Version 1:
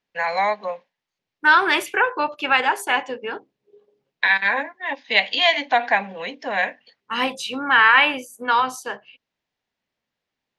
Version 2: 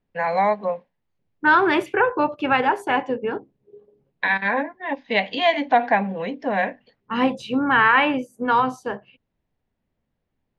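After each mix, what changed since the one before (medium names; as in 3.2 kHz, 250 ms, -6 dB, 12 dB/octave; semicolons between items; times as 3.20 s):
master: add tilt EQ -4.5 dB/octave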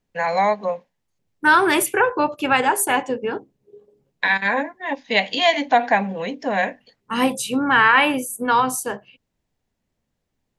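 master: remove distance through air 240 m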